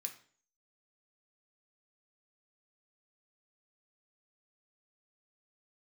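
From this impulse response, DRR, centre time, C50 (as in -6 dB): 3.0 dB, 12 ms, 10.5 dB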